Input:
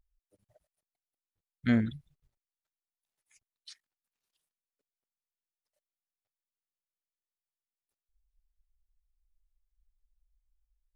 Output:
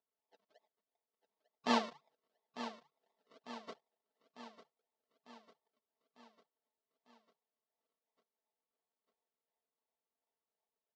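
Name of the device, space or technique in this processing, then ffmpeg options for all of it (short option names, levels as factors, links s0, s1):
circuit-bent sampling toy: -filter_complex "[0:a]highpass=f=200:p=1,asettb=1/sr,asplit=3[s0][s1][s2];[s0]atrim=end=1.774[s3];[s1]atrim=start=1.77:end=3.71,asetpts=PTS-STARTPTS,afade=t=in:d=0.004:c=qsin,afade=t=out:st=1.936:d=0.004:c=qsin,tiltshelf=f=970:g=-6.5[s4];[s2]atrim=start=3.706[s5];[s3][s4]acrossfade=d=0.004:c1=hsin:c2=qsin[s6];[s6][s5]acrossfade=d=0.004:c1=qsin:c2=hsin,acrusher=samples=42:mix=1:aa=0.000001:lfo=1:lforange=25.2:lforate=2.8,highpass=540,equalizer=f=880:t=q:w=4:g=4,equalizer=f=1500:t=q:w=4:g=-7,equalizer=f=2400:t=q:w=4:g=-7,lowpass=f=5100:w=0.5412,lowpass=f=5100:w=1.3066,aecho=1:1:4.5:0.67,aecho=1:1:899|1798|2697|3596|4495|5394:0.251|0.143|0.0816|0.0465|0.0265|0.0151,volume=1.41"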